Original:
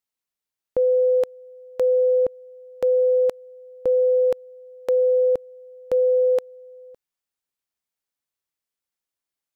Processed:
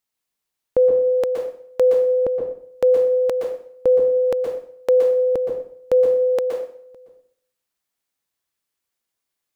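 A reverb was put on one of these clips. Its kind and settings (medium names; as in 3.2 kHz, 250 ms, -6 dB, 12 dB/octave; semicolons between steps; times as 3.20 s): plate-style reverb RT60 0.58 s, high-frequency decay 0.85×, pre-delay 110 ms, DRR 2 dB; trim +4.5 dB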